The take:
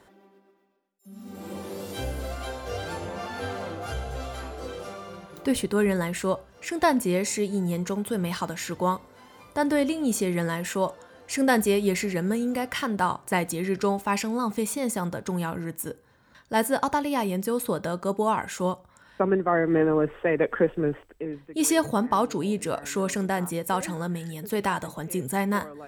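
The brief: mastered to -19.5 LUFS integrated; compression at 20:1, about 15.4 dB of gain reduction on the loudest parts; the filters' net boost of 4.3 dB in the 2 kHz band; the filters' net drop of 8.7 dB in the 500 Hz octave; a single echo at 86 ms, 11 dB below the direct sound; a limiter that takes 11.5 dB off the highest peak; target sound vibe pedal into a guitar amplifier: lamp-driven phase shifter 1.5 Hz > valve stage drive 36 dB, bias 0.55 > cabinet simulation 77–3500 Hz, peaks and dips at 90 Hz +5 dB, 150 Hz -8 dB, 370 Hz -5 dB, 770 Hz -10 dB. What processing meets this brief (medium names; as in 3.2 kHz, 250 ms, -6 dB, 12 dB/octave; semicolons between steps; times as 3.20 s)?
peaking EQ 500 Hz -7.5 dB; peaking EQ 2 kHz +6 dB; compression 20:1, threshold -32 dBFS; peak limiter -31.5 dBFS; delay 86 ms -11 dB; lamp-driven phase shifter 1.5 Hz; valve stage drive 36 dB, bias 0.55; cabinet simulation 77–3500 Hz, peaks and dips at 90 Hz +5 dB, 150 Hz -8 dB, 370 Hz -5 dB, 770 Hz -10 dB; trim +29.5 dB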